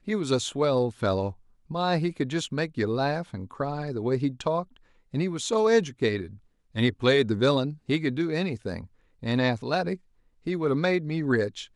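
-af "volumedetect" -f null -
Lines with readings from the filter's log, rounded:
mean_volume: -26.9 dB
max_volume: -9.9 dB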